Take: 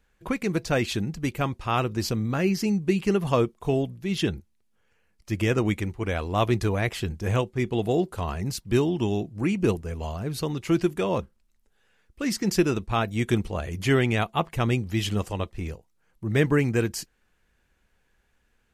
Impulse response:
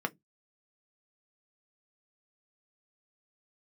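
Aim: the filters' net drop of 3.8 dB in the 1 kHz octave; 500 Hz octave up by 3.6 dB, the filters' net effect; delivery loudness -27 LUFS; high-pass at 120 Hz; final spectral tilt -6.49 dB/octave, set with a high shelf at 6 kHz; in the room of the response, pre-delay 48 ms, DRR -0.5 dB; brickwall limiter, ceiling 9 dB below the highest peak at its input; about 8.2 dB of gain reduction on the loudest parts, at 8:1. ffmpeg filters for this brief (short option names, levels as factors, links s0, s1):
-filter_complex "[0:a]highpass=120,equalizer=f=500:t=o:g=6.5,equalizer=f=1000:t=o:g=-8,highshelf=f=6000:g=-7.5,acompressor=threshold=0.0708:ratio=8,alimiter=limit=0.0891:level=0:latency=1,asplit=2[s0][s1];[1:a]atrim=start_sample=2205,adelay=48[s2];[s1][s2]afir=irnorm=-1:irlink=0,volume=0.562[s3];[s0][s3]amix=inputs=2:normalize=0,volume=1.19"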